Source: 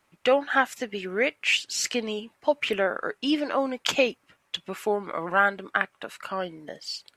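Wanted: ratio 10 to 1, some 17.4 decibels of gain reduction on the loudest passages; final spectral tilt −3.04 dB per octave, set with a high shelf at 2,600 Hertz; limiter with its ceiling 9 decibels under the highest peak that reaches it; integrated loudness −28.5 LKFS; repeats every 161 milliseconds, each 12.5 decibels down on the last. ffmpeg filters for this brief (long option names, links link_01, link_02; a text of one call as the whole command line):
ffmpeg -i in.wav -af "highshelf=frequency=2600:gain=-8,acompressor=threshold=-35dB:ratio=10,alimiter=level_in=4.5dB:limit=-24dB:level=0:latency=1,volume=-4.5dB,aecho=1:1:161|322|483:0.237|0.0569|0.0137,volume=13dB" out.wav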